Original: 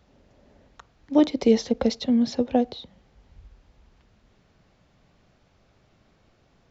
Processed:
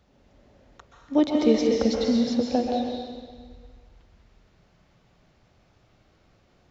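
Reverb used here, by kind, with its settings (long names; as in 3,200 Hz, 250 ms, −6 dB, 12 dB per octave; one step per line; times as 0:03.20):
dense smooth reverb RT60 1.6 s, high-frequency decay 0.95×, pre-delay 115 ms, DRR −0.5 dB
level −2.5 dB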